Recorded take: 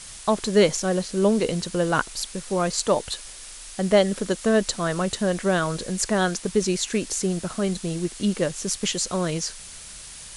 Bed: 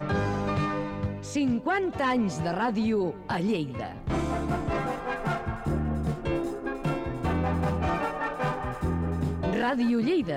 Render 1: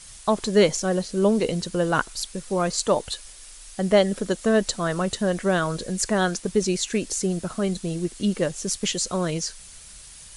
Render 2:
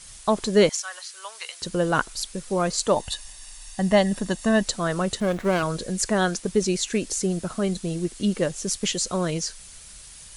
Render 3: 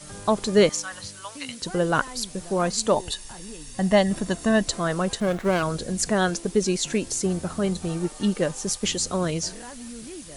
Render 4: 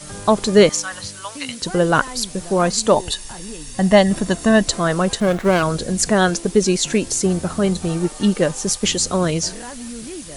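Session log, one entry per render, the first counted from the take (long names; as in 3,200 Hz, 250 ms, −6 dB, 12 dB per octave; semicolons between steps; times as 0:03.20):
broadband denoise 6 dB, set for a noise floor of −41 dBFS
0:00.69–0:01.62: high-pass filter 1,100 Hz 24 dB per octave; 0:02.96–0:04.63: comb filter 1.1 ms, depth 57%; 0:05.20–0:05.63: windowed peak hold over 9 samples
mix in bed −15 dB
level +6.5 dB; brickwall limiter −1 dBFS, peak gain reduction 2.5 dB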